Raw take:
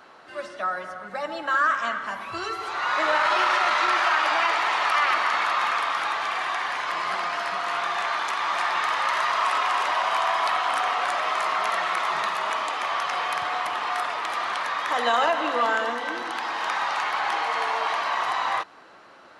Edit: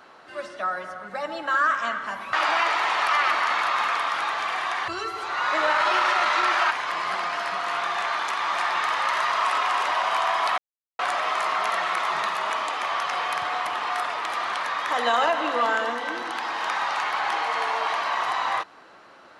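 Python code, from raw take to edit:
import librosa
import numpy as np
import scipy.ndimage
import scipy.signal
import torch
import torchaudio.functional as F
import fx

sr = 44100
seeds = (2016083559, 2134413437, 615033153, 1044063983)

y = fx.edit(x, sr, fx.move(start_s=2.33, length_s=1.83, to_s=6.71),
    fx.silence(start_s=10.58, length_s=0.41), tone=tone)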